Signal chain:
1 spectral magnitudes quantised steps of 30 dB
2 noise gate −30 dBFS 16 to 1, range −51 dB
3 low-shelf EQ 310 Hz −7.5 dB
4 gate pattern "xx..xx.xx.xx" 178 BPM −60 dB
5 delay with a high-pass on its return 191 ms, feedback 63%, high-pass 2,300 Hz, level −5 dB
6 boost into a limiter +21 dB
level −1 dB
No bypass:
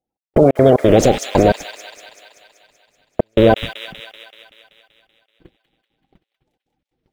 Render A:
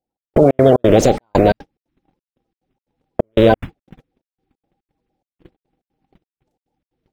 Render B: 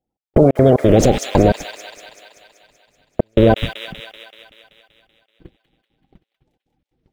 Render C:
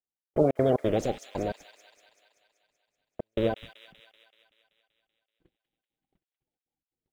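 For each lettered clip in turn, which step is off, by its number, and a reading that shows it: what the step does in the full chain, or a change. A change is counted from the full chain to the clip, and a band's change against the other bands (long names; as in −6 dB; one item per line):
5, change in momentary loudness spread −6 LU
3, 125 Hz band +4.0 dB
6, change in crest factor +5.5 dB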